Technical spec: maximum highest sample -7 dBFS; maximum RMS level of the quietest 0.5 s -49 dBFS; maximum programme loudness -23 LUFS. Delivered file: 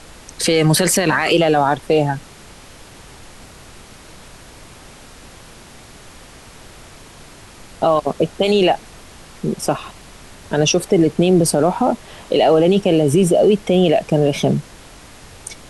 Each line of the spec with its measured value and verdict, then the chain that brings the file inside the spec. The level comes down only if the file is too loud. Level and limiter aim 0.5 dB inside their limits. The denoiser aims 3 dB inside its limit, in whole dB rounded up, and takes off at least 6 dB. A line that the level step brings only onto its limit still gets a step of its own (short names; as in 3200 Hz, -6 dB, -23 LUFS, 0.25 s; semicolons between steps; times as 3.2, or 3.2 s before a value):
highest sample -5.0 dBFS: fail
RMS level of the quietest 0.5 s -41 dBFS: fail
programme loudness -16.5 LUFS: fail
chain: denoiser 6 dB, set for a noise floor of -41 dBFS; gain -7 dB